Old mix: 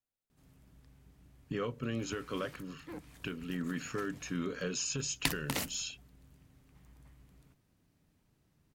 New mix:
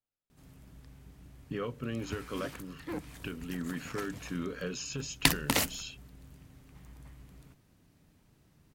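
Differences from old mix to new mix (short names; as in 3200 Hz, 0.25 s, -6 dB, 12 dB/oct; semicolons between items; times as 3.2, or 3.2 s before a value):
speech: add air absorption 71 m; background +7.5 dB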